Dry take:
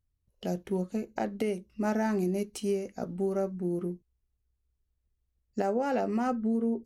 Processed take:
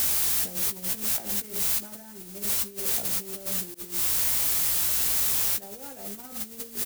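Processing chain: G.711 law mismatch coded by A; hum 60 Hz, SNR 18 dB; requantised 6-bit, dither triangular; on a send: flutter echo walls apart 10.3 m, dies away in 0.34 s; on the sum: negative-ratio compressor -37 dBFS, ratio -0.5; doubler 15 ms -8 dB; in parallel at -0.5 dB: limiter -33 dBFS, peak gain reduction 11.5 dB; 3.74–5.62 on the sum: expander -30 dBFS; high shelf 6300 Hz +10.5 dB; gain -2 dB

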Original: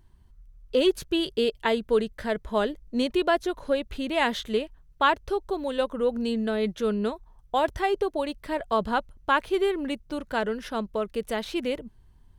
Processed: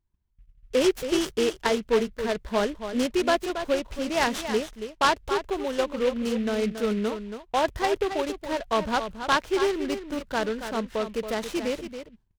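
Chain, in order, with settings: gate -48 dBFS, range -21 dB; echo 0.277 s -9.5 dB; noise-modulated delay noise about 2200 Hz, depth 0.048 ms

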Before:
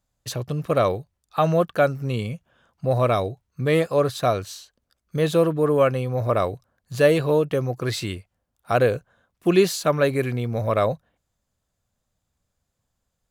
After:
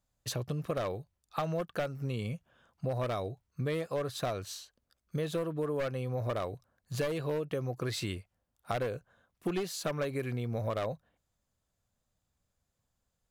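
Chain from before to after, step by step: one-sided fold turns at -13 dBFS; compressor 6:1, threshold -26 dBFS, peak gain reduction 13 dB; gain -4.5 dB

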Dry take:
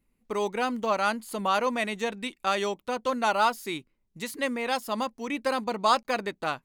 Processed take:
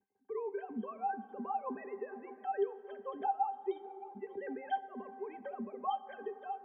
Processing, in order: sine-wave speech; octave resonator G, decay 0.12 s; on a send: tape echo 0.61 s, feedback 71%, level -20.5 dB, low-pass 1500 Hz; on the sum: plate-style reverb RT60 2.3 s, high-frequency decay 0.45×, DRR 14.5 dB; three-band squash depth 40%; gain +1.5 dB

